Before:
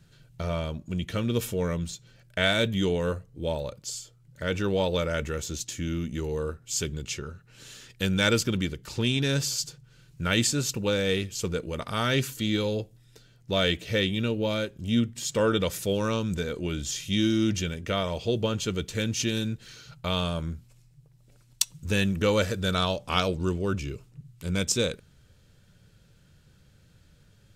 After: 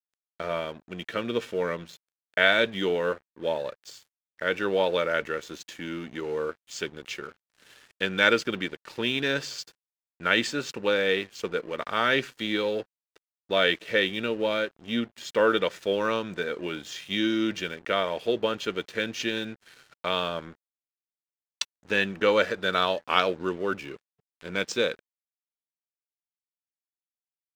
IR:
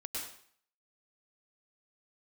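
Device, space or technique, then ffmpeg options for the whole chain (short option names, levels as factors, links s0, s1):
pocket radio on a weak battery: -af "highpass=340,lowpass=3300,aeval=exprs='sgn(val(0))*max(abs(val(0))-0.00251,0)':c=same,equalizer=f=1700:t=o:w=0.58:g=4.5,volume=1.5"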